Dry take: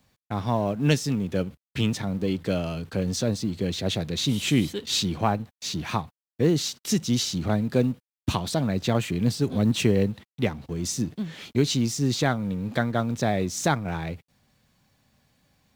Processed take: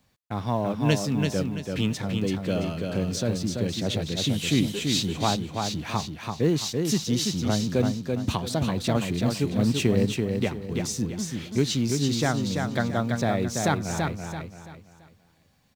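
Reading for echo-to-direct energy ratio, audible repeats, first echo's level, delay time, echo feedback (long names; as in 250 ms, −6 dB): −4.0 dB, 4, −4.5 dB, 335 ms, 34%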